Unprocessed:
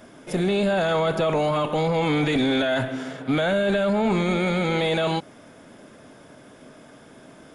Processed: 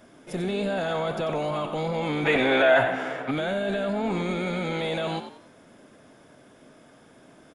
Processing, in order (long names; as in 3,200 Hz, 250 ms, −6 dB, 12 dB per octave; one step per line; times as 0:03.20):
0:02.25–0:03.31: flat-topped bell 1,100 Hz +11.5 dB 3 octaves
echo with shifted repeats 92 ms, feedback 33%, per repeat +59 Hz, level −10 dB
level −6 dB